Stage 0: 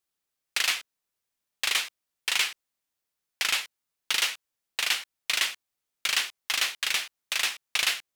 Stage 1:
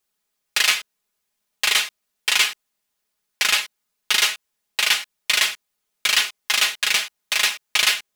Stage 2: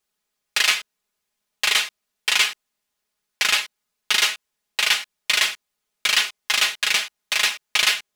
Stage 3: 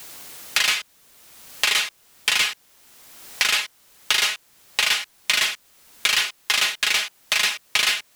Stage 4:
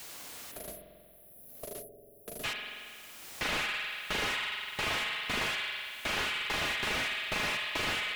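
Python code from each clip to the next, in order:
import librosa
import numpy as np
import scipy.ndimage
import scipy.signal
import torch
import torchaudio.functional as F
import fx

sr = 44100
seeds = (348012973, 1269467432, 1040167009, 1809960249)

y1 = x + 0.79 * np.pad(x, (int(4.8 * sr / 1000.0), 0))[:len(x)]
y1 = F.gain(torch.from_numpy(y1), 5.5).numpy()
y2 = fx.high_shelf(y1, sr, hz=10000.0, db=-5.5)
y3 = 10.0 ** (-13.0 / 20.0) * np.tanh(y2 / 10.0 ** (-13.0 / 20.0))
y3 = fx.dmg_noise_colour(y3, sr, seeds[0], colour='white', level_db=-63.0)
y3 = fx.band_squash(y3, sr, depth_pct=70)
y3 = F.gain(torch.from_numpy(y3), 1.5).numpy()
y4 = fx.spec_erase(y3, sr, start_s=0.52, length_s=1.92, low_hz=750.0, high_hz=9900.0)
y4 = fx.rev_spring(y4, sr, rt60_s=2.2, pass_ms=(45,), chirp_ms=65, drr_db=3.5)
y4 = fx.slew_limit(y4, sr, full_power_hz=120.0)
y4 = F.gain(torch.from_numpy(y4), -4.5).numpy()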